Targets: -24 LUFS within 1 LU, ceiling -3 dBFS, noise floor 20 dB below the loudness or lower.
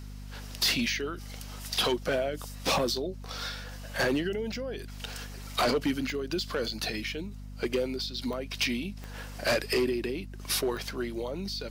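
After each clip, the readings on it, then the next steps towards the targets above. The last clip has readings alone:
clicks found 4; hum 50 Hz; highest harmonic 250 Hz; hum level -39 dBFS; loudness -31.0 LUFS; peak level -19.5 dBFS; loudness target -24.0 LUFS
-> de-click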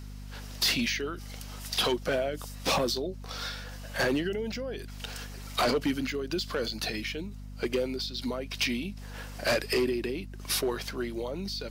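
clicks found 0; hum 50 Hz; highest harmonic 250 Hz; hum level -39 dBFS
-> hum notches 50/100/150/200/250 Hz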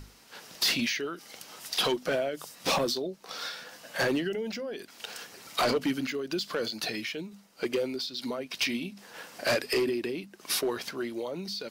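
hum not found; loudness -31.0 LUFS; peak level -20.0 dBFS; loudness target -24.0 LUFS
-> trim +7 dB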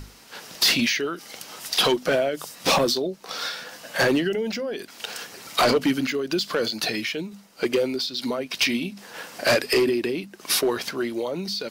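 loudness -24.0 LUFS; peak level -13.0 dBFS; noise floor -47 dBFS

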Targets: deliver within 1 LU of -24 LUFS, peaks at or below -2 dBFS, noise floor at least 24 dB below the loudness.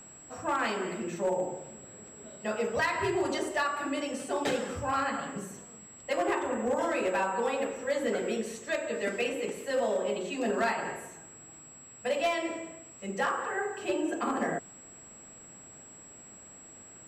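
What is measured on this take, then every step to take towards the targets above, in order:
clipped samples 0.6%; clipping level -22.0 dBFS; steady tone 7.7 kHz; tone level -49 dBFS; loudness -31.5 LUFS; peak level -22.0 dBFS; loudness target -24.0 LUFS
-> clip repair -22 dBFS; band-stop 7.7 kHz, Q 30; trim +7.5 dB

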